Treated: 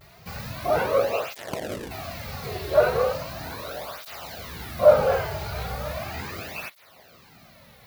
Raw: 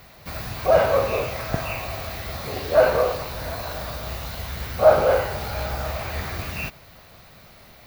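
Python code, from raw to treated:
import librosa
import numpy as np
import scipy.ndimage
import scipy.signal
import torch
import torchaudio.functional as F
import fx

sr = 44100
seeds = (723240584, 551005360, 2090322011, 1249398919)

y = fx.sample_hold(x, sr, seeds[0], rate_hz=1200.0, jitter_pct=20, at=(1.35, 1.89), fade=0.02)
y = fx.vibrato(y, sr, rate_hz=1.0, depth_cents=88.0)
y = fx.flanger_cancel(y, sr, hz=0.37, depth_ms=4.1)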